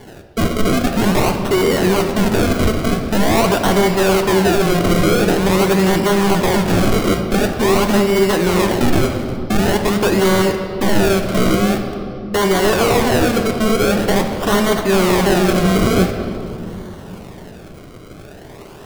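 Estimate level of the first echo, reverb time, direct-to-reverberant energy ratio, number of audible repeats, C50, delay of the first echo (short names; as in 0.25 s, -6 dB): none, 2.8 s, 4.0 dB, none, 6.0 dB, none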